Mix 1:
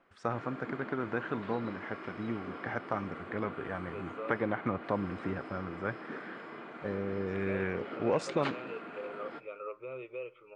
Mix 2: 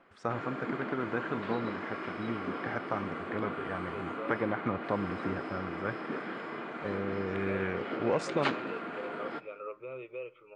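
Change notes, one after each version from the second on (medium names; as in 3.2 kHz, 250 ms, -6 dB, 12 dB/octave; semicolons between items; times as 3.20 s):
background +6.0 dB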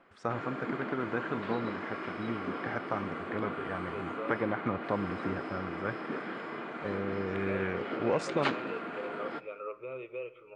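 second voice: send +10.5 dB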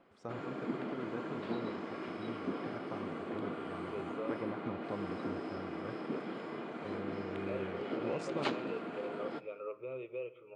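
first voice -8.0 dB; master: add peaking EQ 1.6 kHz -8.5 dB 1.6 oct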